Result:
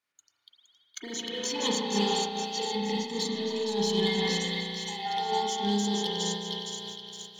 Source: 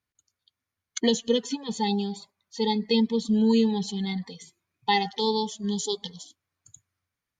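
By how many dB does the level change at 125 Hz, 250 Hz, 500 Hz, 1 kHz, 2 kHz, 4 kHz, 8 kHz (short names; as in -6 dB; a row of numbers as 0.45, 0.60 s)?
-2.0, -6.5, -2.5, -0.5, +0.5, +2.0, +3.0 dB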